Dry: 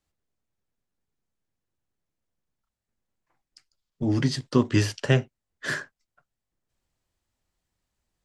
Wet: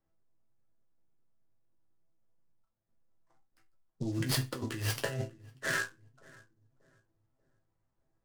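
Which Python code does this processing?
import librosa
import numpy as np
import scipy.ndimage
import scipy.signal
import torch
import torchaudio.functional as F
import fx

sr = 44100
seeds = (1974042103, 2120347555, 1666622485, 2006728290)

p1 = fx.env_lowpass(x, sr, base_hz=1300.0, full_db=-21.5)
p2 = fx.over_compress(p1, sr, threshold_db=-30.0, ratio=-1.0)
p3 = fx.resonator_bank(p2, sr, root=45, chord='minor', decay_s=0.23)
p4 = p3 + fx.echo_filtered(p3, sr, ms=588, feedback_pct=39, hz=940.0, wet_db=-19.5, dry=0)
p5 = fx.noise_mod_delay(p4, sr, seeds[0], noise_hz=5100.0, depth_ms=0.032)
y = F.gain(torch.from_numpy(p5), 7.5).numpy()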